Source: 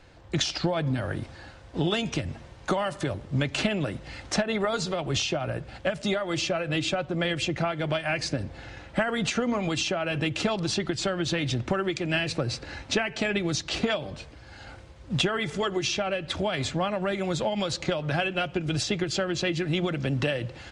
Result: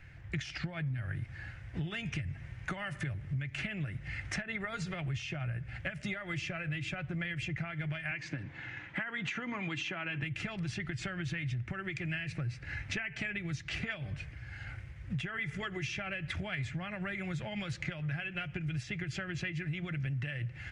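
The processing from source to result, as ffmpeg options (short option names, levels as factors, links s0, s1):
-filter_complex "[0:a]asettb=1/sr,asplit=3[s0][s1][s2];[s0]atrim=end=8.114[s3];[s1]atrim=start=8.11:end=10.23,asetpts=PTS-STARTPTS,afade=t=in:d=0.004:c=qsin,afade=t=out:st=2.116:d=0.004:c=qsin,highpass=190,equalizer=f=300:t=q:w=4:g=6,equalizer=f=630:t=q:w=4:g=-3,equalizer=f=980:t=q:w=4:g=8,equalizer=f=3400:t=q:w=4:g=3,equalizer=f=5200:t=q:w=4:g=-5,lowpass=f=7000:w=0.5412,lowpass=f=7000:w=1.3066[s4];[s2]atrim=start=10.226[s5];[s3][s4]acrossfade=d=0.004:c1=hsin:c2=qsin[s6];[s6][s5]acrossfade=d=0.004:c1=qsin:c2=hsin,equalizer=f=125:t=o:w=1:g=9,equalizer=f=250:t=o:w=1:g=-9,equalizer=f=500:t=o:w=1:g=-11,equalizer=f=1000:t=o:w=1:g=-11,equalizer=f=2000:t=o:w=1:g=11,equalizer=f=4000:t=o:w=1:g=-12,equalizer=f=8000:t=o:w=1:g=-8,acompressor=threshold=0.02:ratio=6"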